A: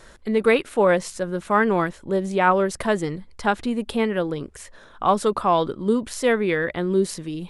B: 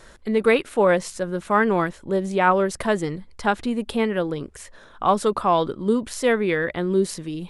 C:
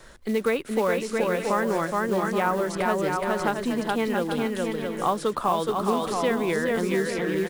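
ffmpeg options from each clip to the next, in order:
ffmpeg -i in.wav -af anull out.wav
ffmpeg -i in.wav -filter_complex "[0:a]acrusher=bits=6:mode=log:mix=0:aa=0.000001,aecho=1:1:420|672|823.2|913.9|968.4:0.631|0.398|0.251|0.158|0.1,acrossover=split=150|1300|5800[link_01][link_02][link_03][link_04];[link_01]acompressor=threshold=-44dB:ratio=4[link_05];[link_02]acompressor=threshold=-21dB:ratio=4[link_06];[link_03]acompressor=threshold=-31dB:ratio=4[link_07];[link_04]acompressor=threshold=-43dB:ratio=4[link_08];[link_05][link_06][link_07][link_08]amix=inputs=4:normalize=0,volume=-1dB" out.wav

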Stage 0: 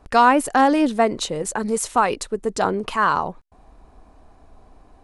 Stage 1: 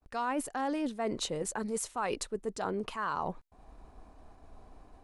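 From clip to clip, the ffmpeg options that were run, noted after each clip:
ffmpeg -i in.wav -af "agate=range=-33dB:threshold=-47dB:ratio=3:detection=peak,areverse,acompressor=threshold=-27dB:ratio=6,areverse,volume=-4dB" out.wav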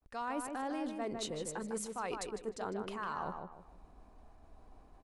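ffmpeg -i in.wav -filter_complex "[0:a]asplit=2[link_01][link_02];[link_02]adelay=153,lowpass=frequency=2800:poles=1,volume=-5dB,asplit=2[link_03][link_04];[link_04]adelay=153,lowpass=frequency=2800:poles=1,volume=0.34,asplit=2[link_05][link_06];[link_06]adelay=153,lowpass=frequency=2800:poles=1,volume=0.34,asplit=2[link_07][link_08];[link_08]adelay=153,lowpass=frequency=2800:poles=1,volume=0.34[link_09];[link_01][link_03][link_05][link_07][link_09]amix=inputs=5:normalize=0,volume=-6dB" out.wav

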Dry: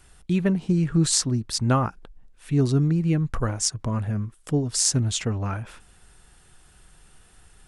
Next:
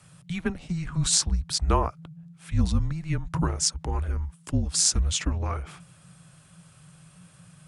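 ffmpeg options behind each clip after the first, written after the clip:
ffmpeg -i in.wav -af "afreqshift=-180,highpass=45" out.wav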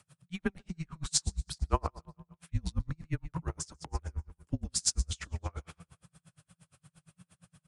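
ffmpeg -i in.wav -af "aecho=1:1:144|288|432|576:0.141|0.065|0.0299|0.0137,aeval=exprs='val(0)*pow(10,-37*(0.5-0.5*cos(2*PI*8.6*n/s))/20)':channel_layout=same,volume=-2.5dB" out.wav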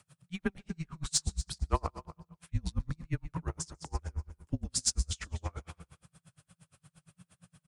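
ffmpeg -i in.wav -af "asoftclip=type=tanh:threshold=-12.5dB,aecho=1:1:240:0.158" out.wav

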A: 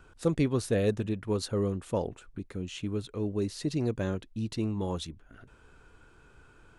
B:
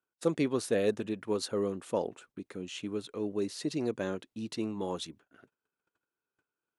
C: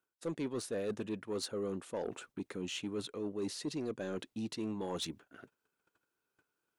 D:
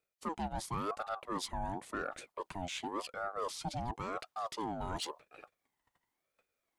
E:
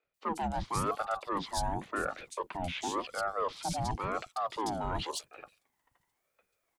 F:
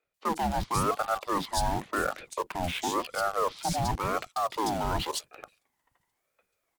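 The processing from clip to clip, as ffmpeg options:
ffmpeg -i in.wav -af "agate=range=-32dB:threshold=-50dB:ratio=16:detection=peak,highpass=240" out.wav
ffmpeg -i in.wav -af "areverse,acompressor=threshold=-39dB:ratio=4,areverse,asoftclip=type=tanh:threshold=-34dB,volume=5dB" out.wav
ffmpeg -i in.wav -af "aeval=exprs='val(0)*sin(2*PI*720*n/s+720*0.4/0.93*sin(2*PI*0.93*n/s))':channel_layout=same,volume=2.5dB" out.wav
ffmpeg -i in.wav -filter_complex "[0:a]acrossover=split=260|3800[link_01][link_02][link_03];[link_01]adelay=40[link_04];[link_03]adelay=140[link_05];[link_04][link_02][link_05]amix=inputs=3:normalize=0,volume=5.5dB" out.wav
ffmpeg -i in.wav -filter_complex "[0:a]asplit=2[link_01][link_02];[link_02]acrusher=bits=5:mix=0:aa=0.000001,volume=-5.5dB[link_03];[link_01][link_03]amix=inputs=2:normalize=0,volume=1.5dB" -ar 44100 -c:a libmp3lame -b:a 112k out.mp3

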